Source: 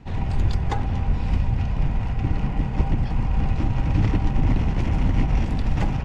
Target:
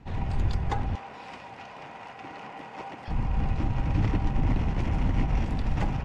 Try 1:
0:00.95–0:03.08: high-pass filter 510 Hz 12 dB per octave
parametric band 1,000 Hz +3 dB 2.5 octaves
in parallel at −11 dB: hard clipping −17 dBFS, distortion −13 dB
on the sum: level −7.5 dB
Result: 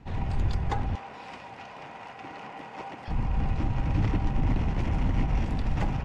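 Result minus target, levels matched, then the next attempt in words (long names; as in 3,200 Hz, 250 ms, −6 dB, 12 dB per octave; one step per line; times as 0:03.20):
hard clipping: distortion +27 dB
0:00.95–0:03.08: high-pass filter 510 Hz 12 dB per octave
parametric band 1,000 Hz +3 dB 2.5 octaves
in parallel at −11 dB: hard clipping −9.5 dBFS, distortion −40 dB
on the sum: level −7.5 dB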